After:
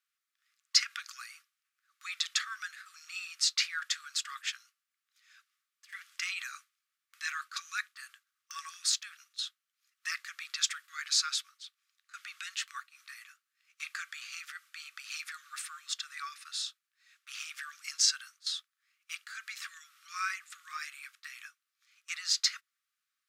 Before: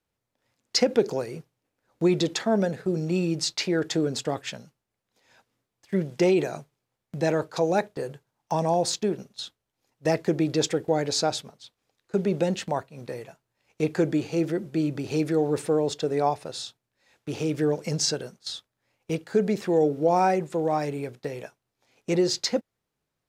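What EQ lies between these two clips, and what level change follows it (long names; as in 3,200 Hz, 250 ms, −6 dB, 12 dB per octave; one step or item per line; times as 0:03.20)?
linear-phase brick-wall high-pass 1,100 Hz
0.0 dB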